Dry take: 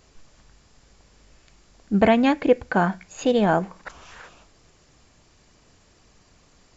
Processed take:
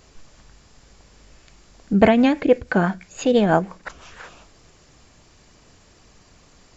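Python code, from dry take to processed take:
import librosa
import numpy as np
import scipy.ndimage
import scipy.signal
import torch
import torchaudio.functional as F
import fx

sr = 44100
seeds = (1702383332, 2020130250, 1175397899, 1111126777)

y = fx.rotary(x, sr, hz=6.0, at=(1.93, 4.2))
y = y * 10.0 ** (4.5 / 20.0)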